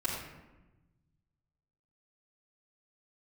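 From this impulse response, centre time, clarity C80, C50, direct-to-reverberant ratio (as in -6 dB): 58 ms, 4.0 dB, 1.5 dB, -10.5 dB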